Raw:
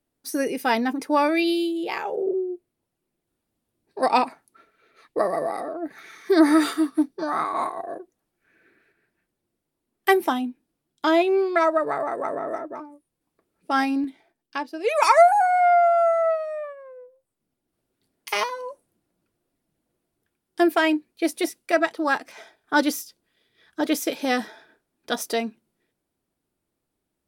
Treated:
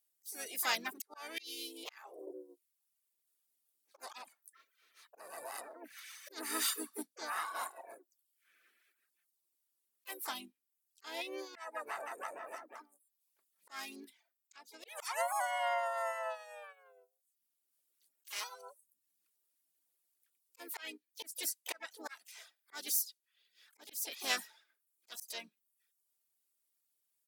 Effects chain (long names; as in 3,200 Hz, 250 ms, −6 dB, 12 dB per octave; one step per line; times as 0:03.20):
pitch-shifted copies added −4 semitones −7 dB, +5 semitones −8 dB, +7 semitones −16 dB
first difference
volume swells 410 ms
reverb reduction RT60 0.62 s
level +2 dB